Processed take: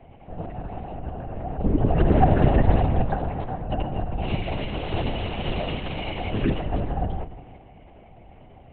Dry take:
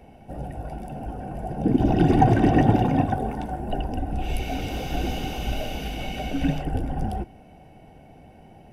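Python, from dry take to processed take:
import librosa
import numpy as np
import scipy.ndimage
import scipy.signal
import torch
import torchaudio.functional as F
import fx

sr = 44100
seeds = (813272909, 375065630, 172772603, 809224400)

y = fx.lowpass(x, sr, hz=2500.0, slope=12, at=(1.72, 2.15))
y = fx.rev_spring(y, sr, rt60_s=1.3, pass_ms=(43, 57), chirp_ms=50, drr_db=9.0)
y = fx.lpc_vocoder(y, sr, seeds[0], excitation='whisper', order=8)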